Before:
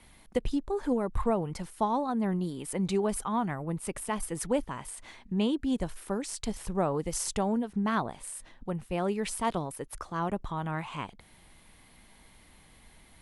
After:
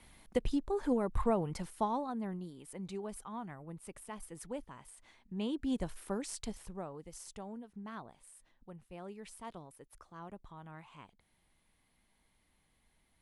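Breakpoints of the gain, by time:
1.68 s -3 dB
2.54 s -13.5 dB
5.22 s -13.5 dB
5.65 s -5 dB
6.36 s -5 dB
6.92 s -17 dB

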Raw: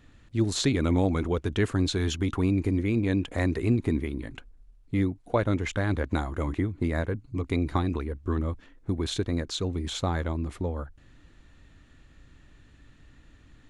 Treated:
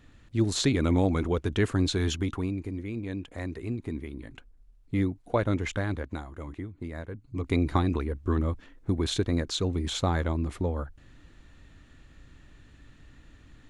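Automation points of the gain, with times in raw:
2.14 s 0 dB
2.63 s -9 dB
3.79 s -9 dB
4.95 s -1 dB
5.74 s -1 dB
6.24 s -10 dB
7.07 s -10 dB
7.53 s +1.5 dB

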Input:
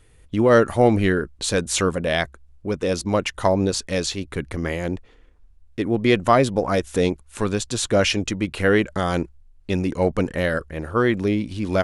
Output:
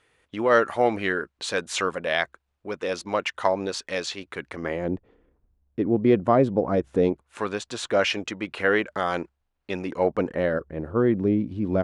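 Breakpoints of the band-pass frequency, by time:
band-pass, Q 0.54
4.5 s 1500 Hz
4.94 s 290 Hz
6.96 s 290 Hz
7.39 s 1200 Hz
9.82 s 1200 Hz
10.93 s 240 Hz

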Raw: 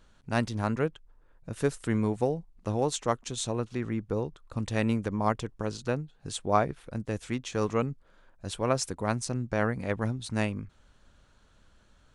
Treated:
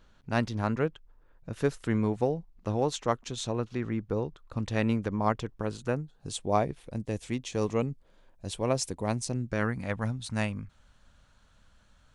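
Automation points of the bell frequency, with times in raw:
bell -9 dB 0.68 oct
5.52 s 8900 Hz
6.4 s 1400 Hz
9.29 s 1400 Hz
9.92 s 370 Hz

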